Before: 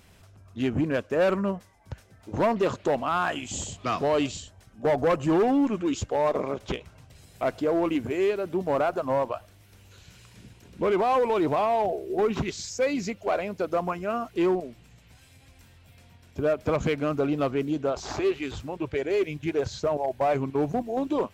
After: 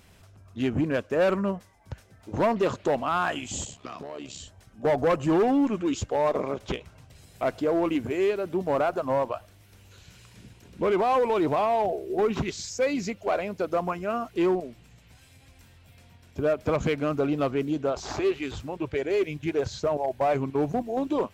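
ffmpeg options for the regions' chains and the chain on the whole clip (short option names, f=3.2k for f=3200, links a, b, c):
-filter_complex "[0:a]asettb=1/sr,asplit=3[a][b][c];[a]atrim=end=3.654[d];[b]atrim=start=3.65:end=4.4,asetpts=PTS-STARTPTS,afade=t=in:d=0.004:c=qsin,afade=t=out:st=0.746:d=0.004:c=qsin,highpass=120,acompressor=threshold=-31dB:ratio=16:attack=3.2:release=140:knee=1:detection=peak,tremolo=f=69:d=0.75[e];[c]atrim=start=4.396[f];[d][e]acrossfade=d=0.004:c1=hsin:c2=qsin[g];[g][f]acrossfade=d=0.004:c1=qsin:c2=hsin"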